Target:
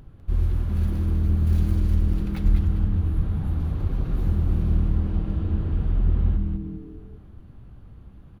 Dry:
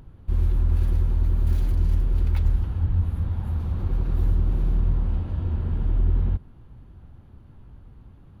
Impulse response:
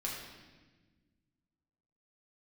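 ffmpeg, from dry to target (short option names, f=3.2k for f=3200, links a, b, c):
-filter_complex "[0:a]bandreject=f=920:w=10,asplit=5[a][b][c][d][e];[b]adelay=199,afreqshift=-120,volume=-5.5dB[f];[c]adelay=398,afreqshift=-240,volume=-14.9dB[g];[d]adelay=597,afreqshift=-360,volume=-24.2dB[h];[e]adelay=796,afreqshift=-480,volume=-33.6dB[i];[a][f][g][h][i]amix=inputs=5:normalize=0,asplit=2[j][k];[1:a]atrim=start_sample=2205,asetrate=48510,aresample=44100[l];[k][l]afir=irnorm=-1:irlink=0,volume=-12dB[m];[j][m]amix=inputs=2:normalize=0,volume=-1dB"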